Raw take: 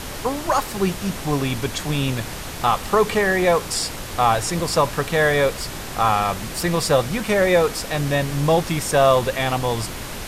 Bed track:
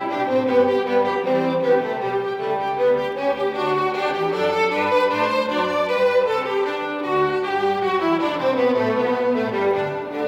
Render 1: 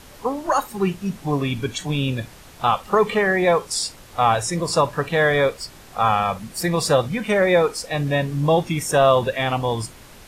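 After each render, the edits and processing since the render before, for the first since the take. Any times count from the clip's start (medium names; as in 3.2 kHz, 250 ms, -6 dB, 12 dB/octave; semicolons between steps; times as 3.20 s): noise print and reduce 13 dB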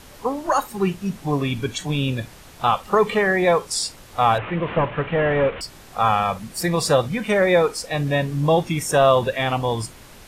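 4.38–5.61 s: one-bit delta coder 16 kbps, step -27 dBFS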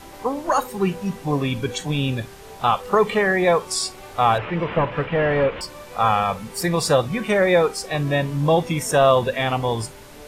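add bed track -20 dB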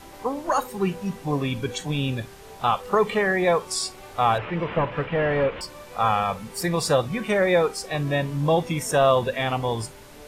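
trim -3 dB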